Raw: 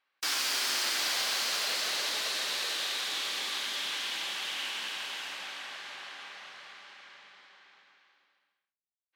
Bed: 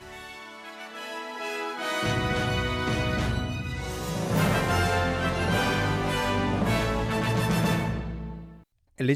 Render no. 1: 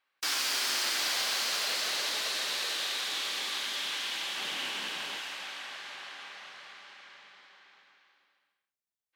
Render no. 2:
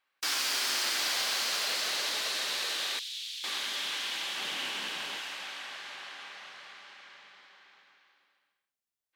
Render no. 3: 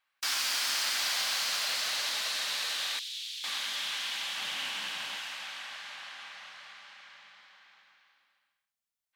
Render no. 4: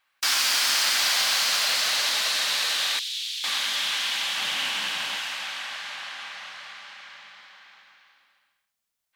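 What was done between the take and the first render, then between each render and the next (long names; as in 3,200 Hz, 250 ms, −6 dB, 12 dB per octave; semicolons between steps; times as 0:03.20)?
0:04.37–0:05.19: low-shelf EQ 490 Hz +10 dB
0:02.99–0:03.44: four-pole ladder high-pass 2,600 Hz, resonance 30%
parametric band 380 Hz −13 dB 0.84 octaves; mains-hum notches 60/120/180/240 Hz
level +8 dB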